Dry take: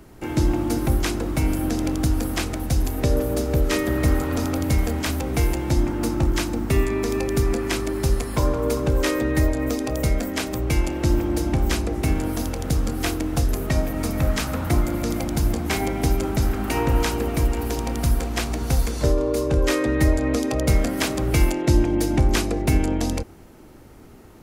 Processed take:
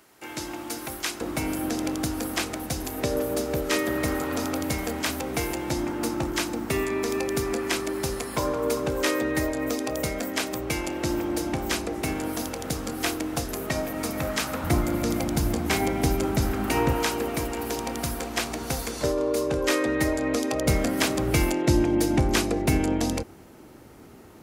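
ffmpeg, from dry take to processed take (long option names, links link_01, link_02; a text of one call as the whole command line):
ffmpeg -i in.wav -af "asetnsamples=nb_out_samples=441:pad=0,asendcmd='1.21 highpass f 360;14.64 highpass f 96;16.93 highpass f 340;20.66 highpass f 120',highpass=frequency=1400:poles=1" out.wav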